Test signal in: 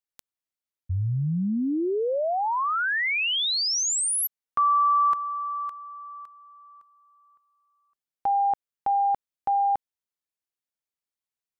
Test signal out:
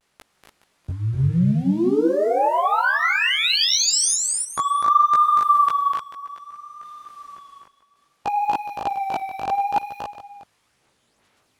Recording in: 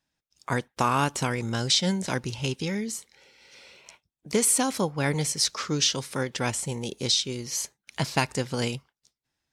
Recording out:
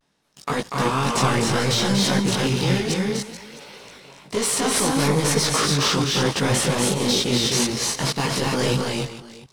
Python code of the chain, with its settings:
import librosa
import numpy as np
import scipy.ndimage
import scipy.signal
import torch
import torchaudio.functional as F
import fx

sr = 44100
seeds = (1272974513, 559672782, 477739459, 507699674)

y = fx.bin_compress(x, sr, power=0.6)
y = fx.high_shelf(y, sr, hz=4700.0, db=-8.5)
y = fx.leveller(y, sr, passes=2)
y = fx.level_steps(y, sr, step_db=24)
y = 10.0 ** (-14.5 / 20.0) * np.tanh(y / 10.0 ** (-14.5 / 20.0))
y = fx.echo_multitap(y, sr, ms=(245, 282, 429, 662), db=(-5.0, -3.5, -13.5, -19.5))
y = fx.chorus_voices(y, sr, voices=4, hz=1.0, base_ms=18, depth_ms=3.7, mix_pct=50)
y = fx.vibrato(y, sr, rate_hz=0.62, depth_cents=53.0)
y = F.gain(torch.from_numpy(y), 5.5).numpy()